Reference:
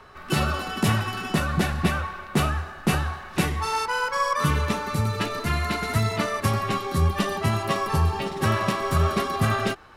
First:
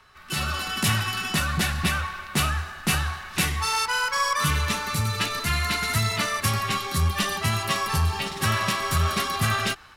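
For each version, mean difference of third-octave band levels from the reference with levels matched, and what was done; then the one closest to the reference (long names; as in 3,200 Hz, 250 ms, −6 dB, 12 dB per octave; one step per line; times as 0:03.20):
5.0 dB: guitar amp tone stack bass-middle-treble 5-5-5
automatic gain control gain up to 8 dB
in parallel at −6 dB: hard clipping −28 dBFS, distortion −10 dB
on the sum: level +2.5 dB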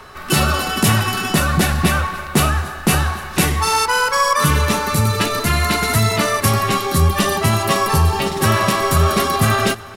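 3.5 dB: high-shelf EQ 5,600 Hz +11 dB
in parallel at +1 dB: brickwall limiter −16 dBFS, peak gain reduction 8.5 dB
on the sum: repeating echo 284 ms, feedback 44%, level −21 dB
level +2 dB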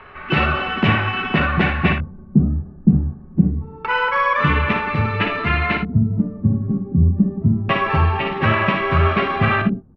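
12.5 dB: auto-filter low-pass square 0.26 Hz 210–2,500 Hz
low-pass filter 3,500 Hz 12 dB per octave
ambience of single reflections 58 ms −7 dB, 79 ms −14.5 dB
level +4.5 dB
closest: second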